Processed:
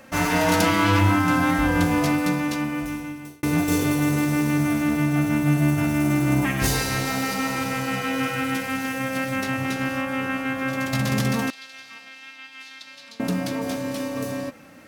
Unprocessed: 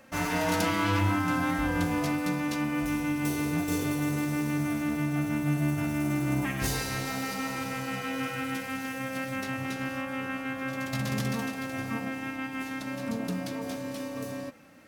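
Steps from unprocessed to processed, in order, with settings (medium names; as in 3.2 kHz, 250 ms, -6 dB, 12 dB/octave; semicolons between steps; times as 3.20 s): 2.19–3.43 s: fade out linear; 11.50–13.20 s: band-pass filter 4 kHz, Q 2.2; trim +7.5 dB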